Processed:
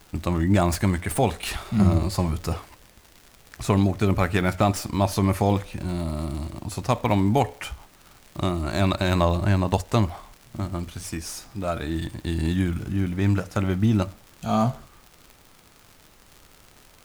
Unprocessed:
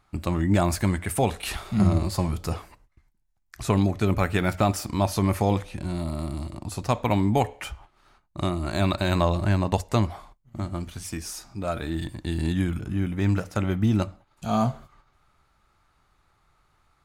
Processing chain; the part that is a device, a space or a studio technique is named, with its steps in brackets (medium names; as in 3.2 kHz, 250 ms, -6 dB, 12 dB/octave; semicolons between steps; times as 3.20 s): record under a worn stylus (tracing distortion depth 0.026 ms; crackle 98 per s -36 dBFS; pink noise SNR 30 dB); trim +1.5 dB